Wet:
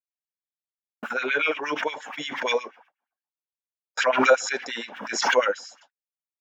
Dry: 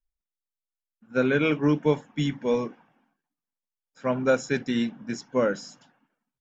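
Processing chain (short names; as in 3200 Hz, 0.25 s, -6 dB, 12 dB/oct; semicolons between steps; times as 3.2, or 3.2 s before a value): gate -55 dBFS, range -56 dB; LFO high-pass sine 8.5 Hz 520–2600 Hz; backwards sustainer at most 57 dB/s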